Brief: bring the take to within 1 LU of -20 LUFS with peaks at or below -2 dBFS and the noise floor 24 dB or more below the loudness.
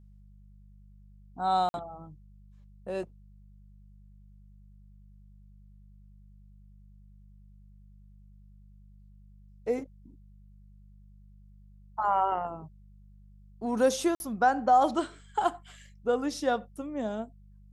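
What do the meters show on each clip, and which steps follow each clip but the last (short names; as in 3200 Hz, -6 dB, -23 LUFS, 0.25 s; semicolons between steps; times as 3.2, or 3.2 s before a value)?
dropouts 2; longest dropout 51 ms; hum 50 Hz; harmonics up to 200 Hz; hum level -51 dBFS; loudness -29.5 LUFS; peak -12.0 dBFS; loudness target -20.0 LUFS
-> interpolate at 1.69/14.15, 51 ms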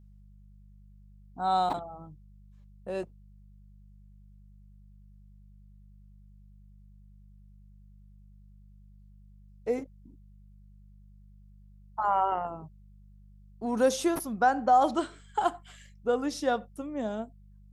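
dropouts 0; hum 50 Hz; harmonics up to 200 Hz; hum level -51 dBFS
-> de-hum 50 Hz, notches 4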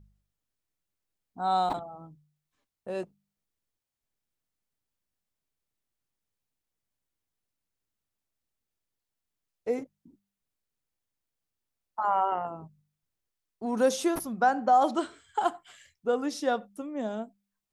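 hum none; loudness -29.5 LUFS; peak -12.0 dBFS; loudness target -20.0 LUFS
-> gain +9.5 dB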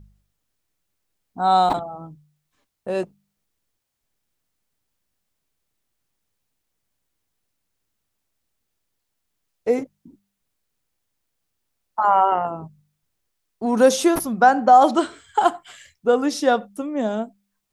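loudness -20.0 LUFS; peak -2.5 dBFS; noise floor -77 dBFS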